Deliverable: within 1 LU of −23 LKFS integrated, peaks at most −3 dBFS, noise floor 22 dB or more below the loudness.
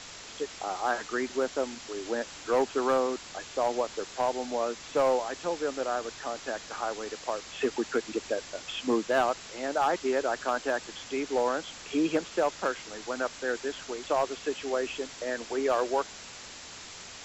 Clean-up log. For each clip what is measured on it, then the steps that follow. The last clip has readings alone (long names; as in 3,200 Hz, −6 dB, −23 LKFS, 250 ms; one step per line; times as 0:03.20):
share of clipped samples 0.4%; peaks flattened at −18.5 dBFS; background noise floor −45 dBFS; target noise floor −53 dBFS; integrated loudness −31.0 LKFS; sample peak −18.5 dBFS; target loudness −23.0 LKFS
→ clipped peaks rebuilt −18.5 dBFS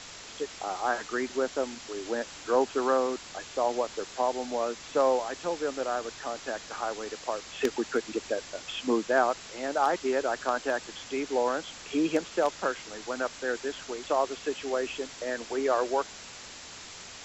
share of clipped samples 0.0%; background noise floor −45 dBFS; target noise floor −53 dBFS
→ broadband denoise 8 dB, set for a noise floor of −45 dBFS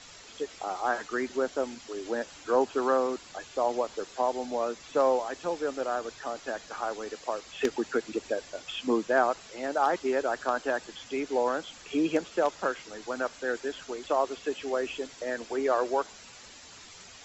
background noise floor −50 dBFS; target noise floor −53 dBFS
→ broadband denoise 6 dB, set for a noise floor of −50 dBFS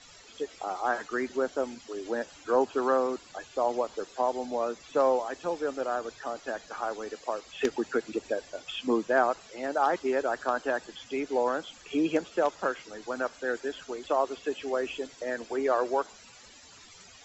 background noise floor −53 dBFS; integrated loudness −30.5 LKFS; sample peak −9.5 dBFS; target loudness −23.0 LKFS
→ level +7.5 dB
brickwall limiter −3 dBFS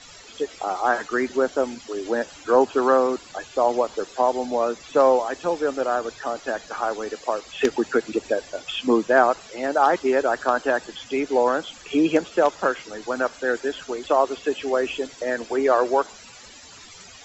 integrated loudness −23.0 LKFS; sample peak −3.0 dBFS; background noise floor −45 dBFS